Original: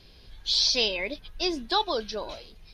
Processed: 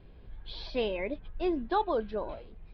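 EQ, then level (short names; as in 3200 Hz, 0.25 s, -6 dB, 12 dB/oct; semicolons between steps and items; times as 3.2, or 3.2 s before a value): air absorption 400 m; tape spacing loss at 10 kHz 28 dB; +2.5 dB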